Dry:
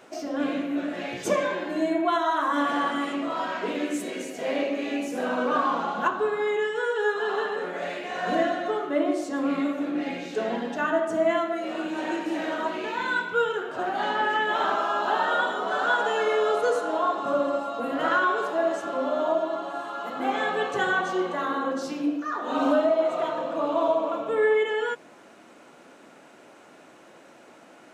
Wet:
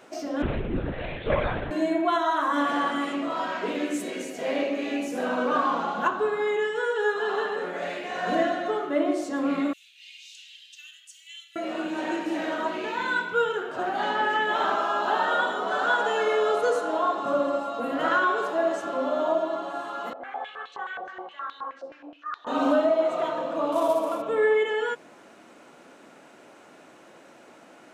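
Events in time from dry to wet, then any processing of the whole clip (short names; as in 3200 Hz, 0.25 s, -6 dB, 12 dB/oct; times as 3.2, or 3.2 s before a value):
0.42–1.71 LPC vocoder at 8 kHz whisper
9.73–11.56 elliptic high-pass 2800 Hz, stop band 70 dB
20.13–22.47 stepped band-pass 9.5 Hz 600–3800 Hz
23.72–24.22 CVSD 64 kbps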